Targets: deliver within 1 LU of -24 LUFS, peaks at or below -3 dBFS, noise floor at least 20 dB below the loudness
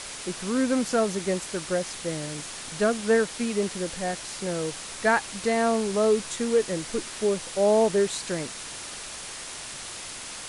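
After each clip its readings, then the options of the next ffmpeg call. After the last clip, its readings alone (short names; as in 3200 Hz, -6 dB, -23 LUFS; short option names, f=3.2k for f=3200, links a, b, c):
noise floor -39 dBFS; noise floor target -47 dBFS; loudness -27.0 LUFS; peak -10.0 dBFS; loudness target -24.0 LUFS
-> -af "afftdn=nr=8:nf=-39"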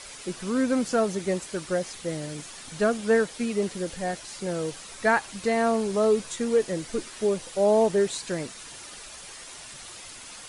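noise floor -43 dBFS; noise floor target -47 dBFS
-> -af "afftdn=nr=6:nf=-43"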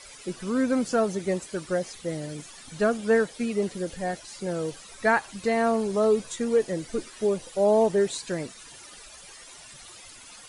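noise floor -47 dBFS; loudness -26.5 LUFS; peak -10.5 dBFS; loudness target -24.0 LUFS
-> -af "volume=2.5dB"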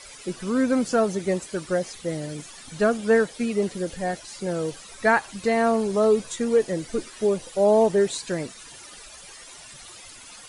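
loudness -24.0 LUFS; peak -8.0 dBFS; noise floor -45 dBFS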